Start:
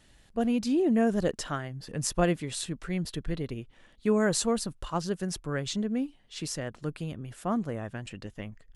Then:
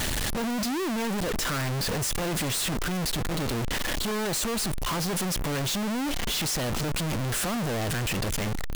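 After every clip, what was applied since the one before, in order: infinite clipping; gain +2.5 dB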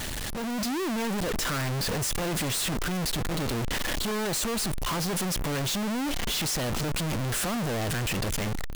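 AGC gain up to 5 dB; gain -5.5 dB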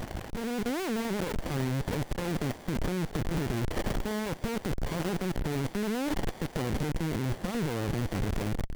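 Butterworth band-stop 1000 Hz, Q 1.9; running maximum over 33 samples

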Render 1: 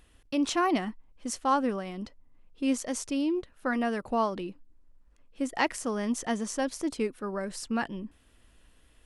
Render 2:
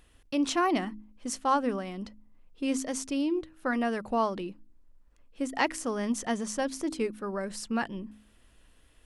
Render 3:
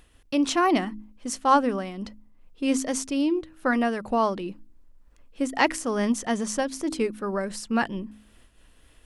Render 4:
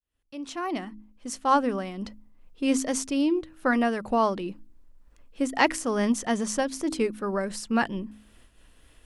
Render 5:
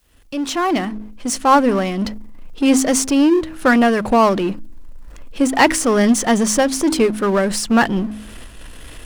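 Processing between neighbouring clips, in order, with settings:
de-hum 53.05 Hz, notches 6
noise-modulated level, depth 65%; gain +7.5 dB
opening faded in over 2.01 s
power-law curve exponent 0.7; gain +6.5 dB

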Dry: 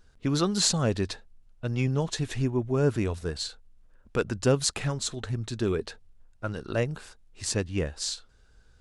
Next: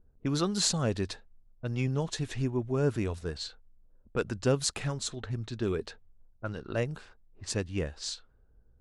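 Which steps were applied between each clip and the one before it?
low-pass opened by the level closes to 490 Hz, open at -26 dBFS; gain -3.5 dB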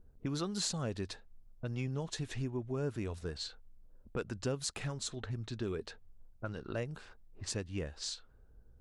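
compressor 2:1, threshold -44 dBFS, peak gain reduction 13 dB; gain +2.5 dB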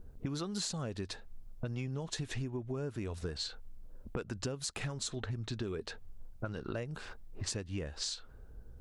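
compressor 6:1, threshold -44 dBFS, peak gain reduction 13.5 dB; gain +9 dB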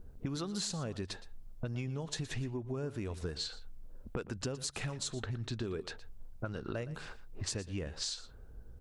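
echo 0.117 s -16 dB

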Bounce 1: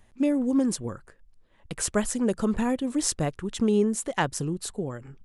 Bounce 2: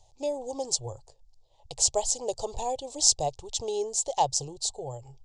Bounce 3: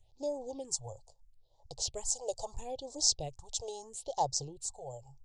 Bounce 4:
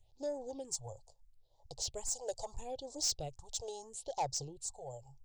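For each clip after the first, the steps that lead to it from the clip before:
EQ curve 130 Hz 0 dB, 200 Hz -29 dB, 410 Hz -4 dB, 830 Hz +9 dB, 1500 Hz -30 dB, 3000 Hz -1 dB, 4500 Hz +11 dB, 7300 Hz +10 dB, 11000 Hz -14 dB; gain -1.5 dB
phaser stages 4, 0.76 Hz, lowest notch 250–2700 Hz; gain -5 dB
soft clip -25 dBFS, distortion -12 dB; gain -2 dB

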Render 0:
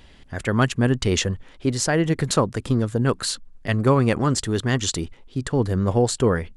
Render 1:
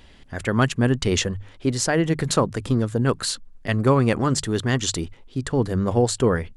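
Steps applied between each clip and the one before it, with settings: notches 50/100/150 Hz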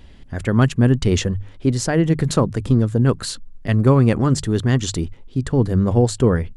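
low shelf 360 Hz +9.5 dB; gain -2 dB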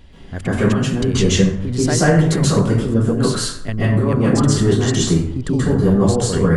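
negative-ratio compressor -19 dBFS, ratio -1; reverb RT60 0.70 s, pre-delay 0.123 s, DRR -8.5 dB; gain -4 dB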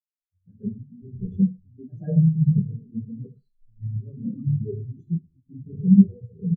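feedback echo 76 ms, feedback 57%, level -7 dB; spectral expander 4:1; gain -1.5 dB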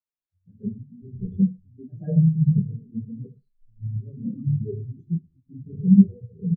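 mismatched tape noise reduction decoder only

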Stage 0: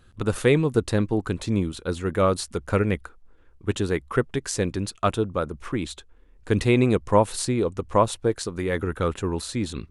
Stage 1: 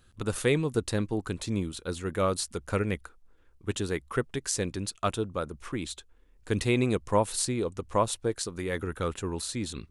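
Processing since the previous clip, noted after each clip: high shelf 3500 Hz +8 dB; gain -6.5 dB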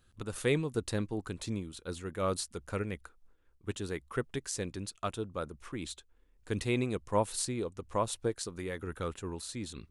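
noise-modulated level, depth 60%; gain -2 dB

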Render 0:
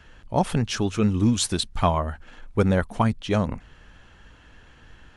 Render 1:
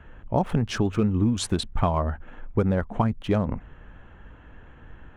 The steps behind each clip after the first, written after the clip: Wiener smoothing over 9 samples; high shelf 2200 Hz -9 dB; compressor, threshold -23 dBFS, peak gain reduction 8 dB; gain +4.5 dB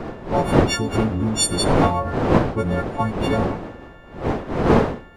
frequency quantiser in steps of 4 st; wind noise 540 Hz -22 dBFS; Schroeder reverb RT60 0.47 s, combs from 30 ms, DRR 18 dB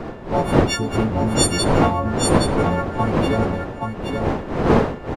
echo 0.824 s -4.5 dB

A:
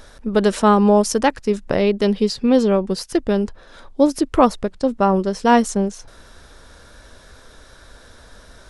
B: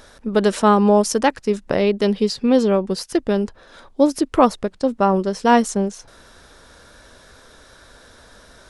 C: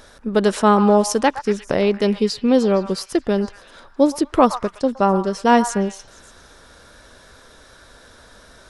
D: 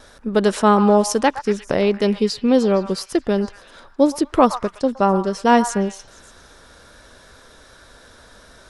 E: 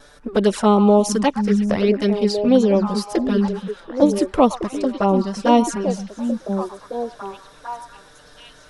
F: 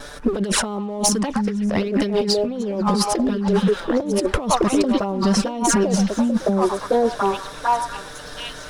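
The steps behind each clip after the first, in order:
low shelf 76 Hz -9 dB
delay with a stepping band-pass 0.116 s, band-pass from 1100 Hz, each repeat 0.7 oct, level -9 dB
gate with hold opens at -39 dBFS
envelope flanger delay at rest 7.3 ms, full sweep at -11.5 dBFS; on a send: delay with a stepping band-pass 0.729 s, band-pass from 170 Hz, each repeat 1.4 oct, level -3 dB; on the sum: gain +1.5 dB
negative-ratio compressor -26 dBFS, ratio -1; sample leveller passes 1; gain +2 dB

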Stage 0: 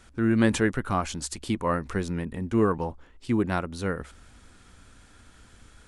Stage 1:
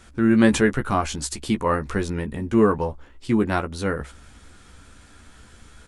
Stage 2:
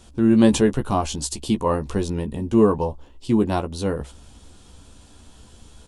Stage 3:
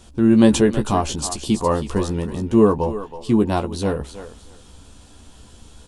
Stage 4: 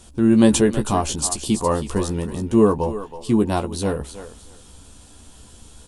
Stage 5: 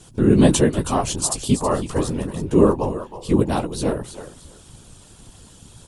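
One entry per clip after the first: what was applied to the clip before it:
doubler 14 ms -7 dB; gain +4 dB
band shelf 1700 Hz -10.5 dB 1.1 oct; gain +1.5 dB
thinning echo 0.322 s, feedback 22%, high-pass 440 Hz, level -10.5 dB; gain +2 dB
bell 9900 Hz +7.5 dB 1 oct; gain -1 dB
whisperiser

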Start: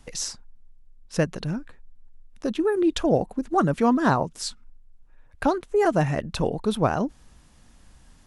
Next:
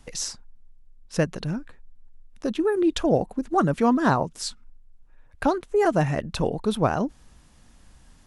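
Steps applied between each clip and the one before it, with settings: nothing audible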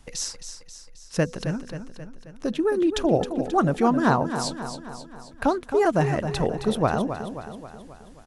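de-hum 247.2 Hz, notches 2; on a send: feedback echo 0.267 s, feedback 55%, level -9.5 dB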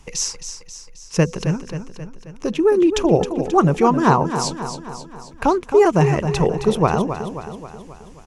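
ripple EQ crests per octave 0.76, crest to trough 7 dB; gain +5 dB

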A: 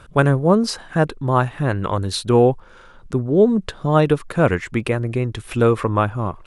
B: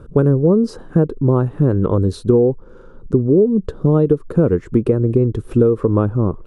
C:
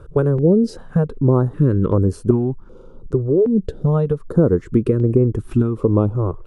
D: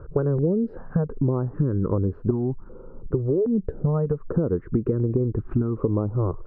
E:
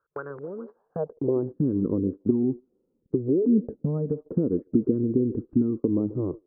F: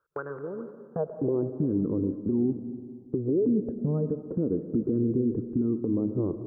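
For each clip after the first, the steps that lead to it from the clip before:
EQ curve 110 Hz 0 dB, 460 Hz +9 dB, 680 Hz -6 dB, 1300 Hz -5 dB, 2100 Hz -17 dB, 5700 Hz -12 dB; compressor 6:1, threshold -14 dBFS, peak gain reduction 12.5 dB; low shelf 260 Hz +7 dB; gain +1 dB
stepped notch 2.6 Hz 220–3800 Hz
LPF 1600 Hz 24 dB/oct; compressor, threshold -19 dBFS, peak gain reduction 10.5 dB
delay with a stepping band-pass 0.14 s, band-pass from 400 Hz, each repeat 0.7 oct, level -12 dB; gate -27 dBFS, range -25 dB; band-pass sweep 1500 Hz -> 270 Hz, 0.48–1.56; gain +5 dB
limiter -18.5 dBFS, peak gain reduction 8.5 dB; on a send at -11 dB: reverb RT60 1.9 s, pre-delay 65 ms

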